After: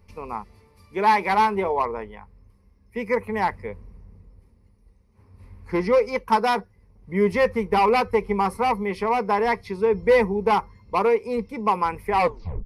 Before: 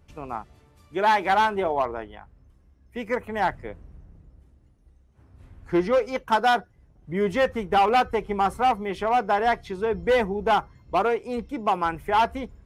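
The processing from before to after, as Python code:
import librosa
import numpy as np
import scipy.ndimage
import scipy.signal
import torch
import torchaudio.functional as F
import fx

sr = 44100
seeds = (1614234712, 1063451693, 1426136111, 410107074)

y = fx.tape_stop_end(x, sr, length_s=0.53)
y = fx.ripple_eq(y, sr, per_octave=0.88, db=11)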